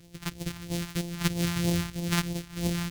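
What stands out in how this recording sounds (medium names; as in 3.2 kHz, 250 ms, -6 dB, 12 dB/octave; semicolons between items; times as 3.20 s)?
a buzz of ramps at a fixed pitch in blocks of 256 samples; phasing stages 2, 3.1 Hz, lowest notch 470–1300 Hz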